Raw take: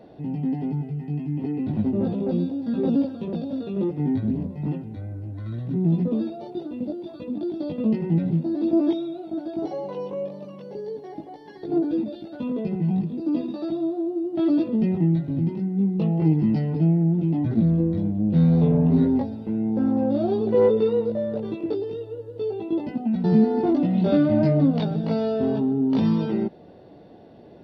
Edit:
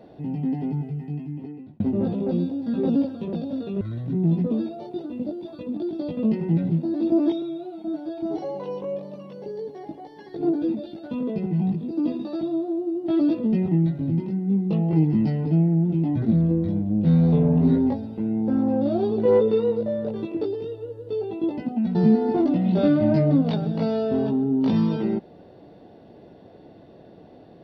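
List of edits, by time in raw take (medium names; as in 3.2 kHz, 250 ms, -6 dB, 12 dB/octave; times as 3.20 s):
0.91–1.80 s: fade out
3.81–5.42 s: delete
9.03–9.67 s: stretch 1.5×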